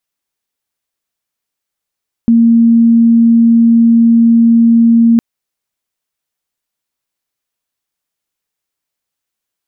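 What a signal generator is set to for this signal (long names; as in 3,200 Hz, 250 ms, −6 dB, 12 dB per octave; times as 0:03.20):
tone sine 231 Hz −4 dBFS 2.91 s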